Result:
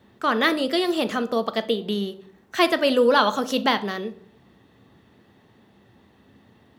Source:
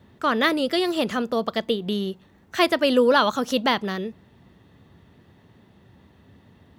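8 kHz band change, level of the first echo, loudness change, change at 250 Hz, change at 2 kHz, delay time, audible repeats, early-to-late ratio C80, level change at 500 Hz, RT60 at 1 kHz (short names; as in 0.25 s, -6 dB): +0.5 dB, none, 0.0 dB, -0.5 dB, +0.5 dB, none, none, 20.5 dB, 0.0 dB, 0.50 s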